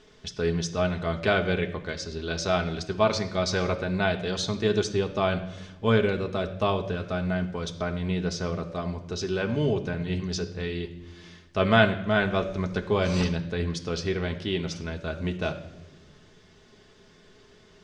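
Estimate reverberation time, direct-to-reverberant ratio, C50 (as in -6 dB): no single decay rate, 3.0 dB, 12.5 dB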